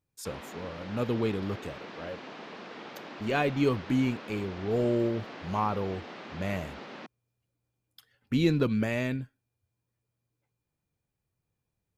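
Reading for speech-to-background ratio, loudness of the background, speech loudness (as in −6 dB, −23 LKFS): 13.0 dB, −43.5 LKFS, −30.5 LKFS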